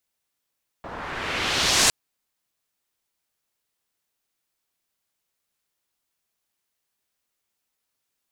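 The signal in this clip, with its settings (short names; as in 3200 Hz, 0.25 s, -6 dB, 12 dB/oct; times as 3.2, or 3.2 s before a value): swept filtered noise white, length 1.06 s lowpass, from 920 Hz, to 7600 Hz, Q 1.2, exponential, gain ramp +11.5 dB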